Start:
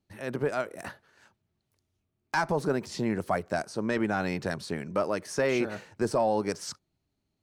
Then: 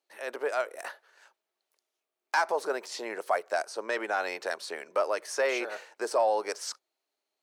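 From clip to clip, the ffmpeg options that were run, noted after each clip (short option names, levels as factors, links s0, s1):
-af "highpass=f=460:w=0.5412,highpass=f=460:w=1.3066,volume=1.19"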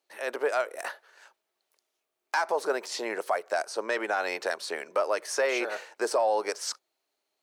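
-af "alimiter=limit=0.0944:level=0:latency=1:release=204,volume=1.58"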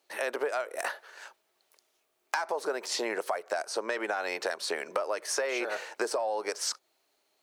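-af "acompressor=threshold=0.0158:ratio=6,volume=2.37"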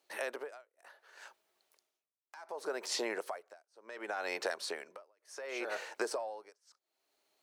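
-af "tremolo=f=0.68:d=0.99,volume=0.668"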